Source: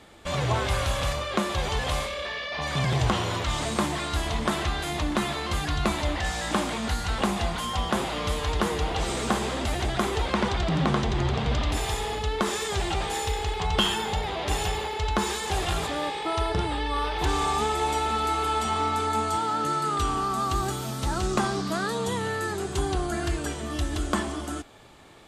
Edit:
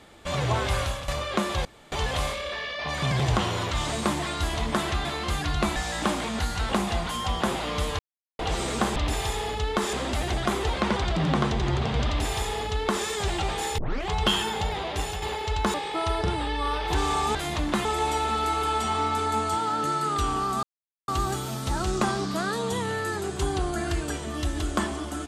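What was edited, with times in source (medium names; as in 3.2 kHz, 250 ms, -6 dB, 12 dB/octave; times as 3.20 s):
0.80–1.08 s: fade out, to -13 dB
1.65 s: insert room tone 0.27 s
4.78–5.28 s: move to 17.66 s
5.99–6.25 s: delete
8.48–8.88 s: mute
11.60–12.57 s: copy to 9.45 s
13.30 s: tape start 0.31 s
14.32–14.74 s: fade out, to -6.5 dB
15.26–16.05 s: delete
20.44 s: insert silence 0.45 s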